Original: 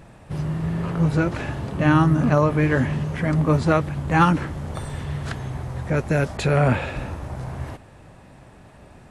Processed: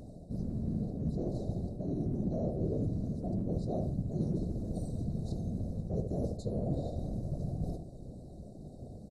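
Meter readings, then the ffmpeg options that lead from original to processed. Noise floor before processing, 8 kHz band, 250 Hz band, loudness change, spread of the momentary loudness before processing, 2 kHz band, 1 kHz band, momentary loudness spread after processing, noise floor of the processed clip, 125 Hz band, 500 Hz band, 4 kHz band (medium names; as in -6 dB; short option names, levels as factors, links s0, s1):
-48 dBFS, under -15 dB, -12.0 dB, -13.5 dB, 14 LU, under -40 dB, -25.5 dB, 14 LU, -49 dBFS, -13.0 dB, -14.0 dB, under -20 dB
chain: -filter_complex "[0:a]afftfilt=real='re*(1-between(b*sr/4096,710,3700))':imag='im*(1-between(b*sr/4096,710,3700))':win_size=4096:overlap=0.75,tiltshelf=f=850:g=4,areverse,acompressor=threshold=0.0355:ratio=5,areverse,afftfilt=real='hypot(re,im)*cos(2*PI*random(0))':imag='hypot(re,im)*sin(2*PI*random(1))':win_size=512:overlap=0.75,asplit=2[s0][s1];[s1]adelay=71,lowpass=f=1100:p=1,volume=0.562,asplit=2[s2][s3];[s3]adelay=71,lowpass=f=1100:p=1,volume=0.24,asplit=2[s4][s5];[s5]adelay=71,lowpass=f=1100:p=1,volume=0.24[s6];[s0][s2][s4][s6]amix=inputs=4:normalize=0,volume=1.19"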